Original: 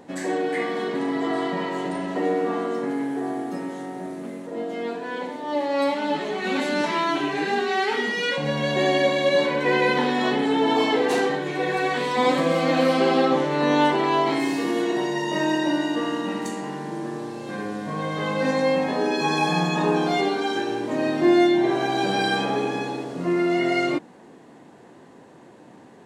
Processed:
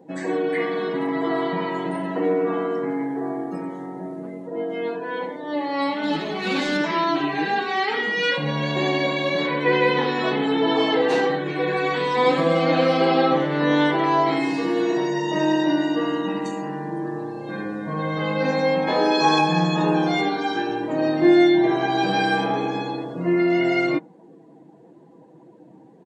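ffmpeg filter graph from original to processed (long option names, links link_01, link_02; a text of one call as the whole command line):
ffmpeg -i in.wav -filter_complex "[0:a]asettb=1/sr,asplit=3[link_01][link_02][link_03];[link_01]atrim=end=6.034[link_04];[link_02]atrim=start=6.03:end=6.77,asetpts=PTS-STARTPTS,afade=type=in:duration=0.004:curve=qsin,afade=type=out:start_time=0.736:duration=0.004:curve=qsin,bass=frequency=250:gain=4,treble=frequency=4000:gain=12,adynamicsmooth=sensitivity=7.5:basefreq=1700[link_05];[link_03]atrim=start=6.766[link_06];[link_04][link_05]acrossfade=duration=0.004:curve1=hsin:curve2=qsin[link_07];[link_07][link_06]acrossfade=duration=0.004:curve1=qsin:curve2=hsin,asettb=1/sr,asplit=3[link_08][link_09][link_10];[link_08]atrim=end=18.874[link_11];[link_09]atrim=start=18.87:end=19.41,asetpts=PTS-STARTPTS,afade=type=in:duration=0.004:curve=qsin,afade=type=out:start_time=0.536:duration=0.004:curve=qsin,bass=frequency=250:gain=-9,treble=frequency=4000:gain=1,acontrast=23[link_12];[link_10]atrim=start=19.406[link_13];[link_11][link_12]acrossfade=duration=0.004:curve1=hsin:curve2=qsin[link_14];[link_14][link_13]acrossfade=duration=0.004:curve1=qsin:curve2=hsin,afftdn=noise_reduction=16:noise_floor=-44,acrossover=split=6100[link_15][link_16];[link_16]acompressor=threshold=-54dB:ratio=4:attack=1:release=60[link_17];[link_15][link_17]amix=inputs=2:normalize=0,aecho=1:1:6.2:0.53" out.wav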